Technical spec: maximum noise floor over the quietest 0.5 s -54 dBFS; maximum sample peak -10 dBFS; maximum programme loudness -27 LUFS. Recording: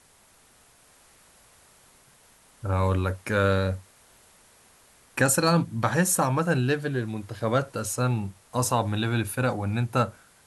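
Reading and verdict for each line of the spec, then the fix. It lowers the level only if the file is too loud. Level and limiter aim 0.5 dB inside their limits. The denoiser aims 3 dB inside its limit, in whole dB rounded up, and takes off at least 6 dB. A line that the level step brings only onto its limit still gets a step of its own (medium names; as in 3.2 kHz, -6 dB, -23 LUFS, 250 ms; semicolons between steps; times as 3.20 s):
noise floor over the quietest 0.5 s -58 dBFS: pass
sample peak -8.0 dBFS: fail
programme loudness -25.5 LUFS: fail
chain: trim -2 dB; peak limiter -10.5 dBFS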